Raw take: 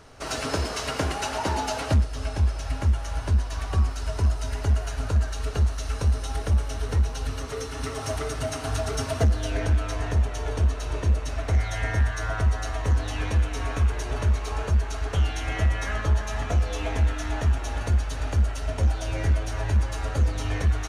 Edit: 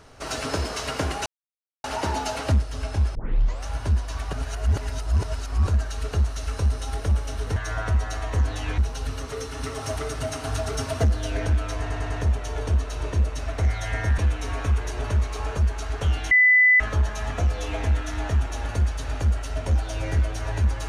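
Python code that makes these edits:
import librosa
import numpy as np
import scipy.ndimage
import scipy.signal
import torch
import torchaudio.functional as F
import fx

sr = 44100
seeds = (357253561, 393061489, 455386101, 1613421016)

y = fx.edit(x, sr, fx.insert_silence(at_s=1.26, length_s=0.58),
    fx.tape_start(start_s=2.57, length_s=0.51),
    fx.reverse_span(start_s=3.75, length_s=1.34),
    fx.stutter(start_s=10.0, slice_s=0.1, count=4),
    fx.move(start_s=12.08, length_s=1.22, to_s=6.98),
    fx.bleep(start_s=15.43, length_s=0.49, hz=2000.0, db=-12.5), tone=tone)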